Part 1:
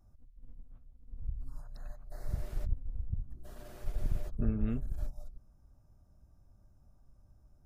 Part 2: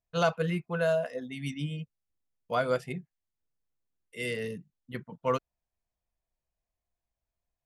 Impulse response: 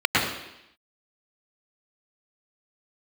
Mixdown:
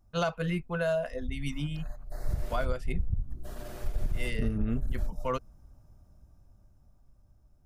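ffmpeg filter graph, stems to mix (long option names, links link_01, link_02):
-filter_complex "[0:a]dynaudnorm=framelen=290:gausssize=13:maxgain=8.5dB,volume=-0.5dB[link_01];[1:a]bandreject=frequency=470:width=12,volume=0dB[link_02];[link_01][link_02]amix=inputs=2:normalize=0,alimiter=limit=-19dB:level=0:latency=1:release=185"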